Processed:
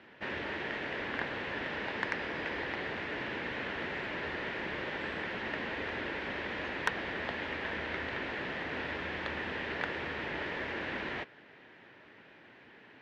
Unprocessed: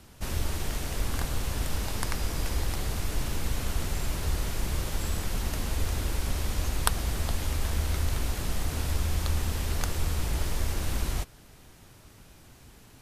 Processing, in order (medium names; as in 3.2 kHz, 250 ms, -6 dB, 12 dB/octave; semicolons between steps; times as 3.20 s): cabinet simulation 320–2900 Hz, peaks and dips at 730 Hz -4 dB, 1.2 kHz -6 dB, 1.8 kHz +8 dB; saturation -18.5 dBFS, distortion -18 dB; trim +3 dB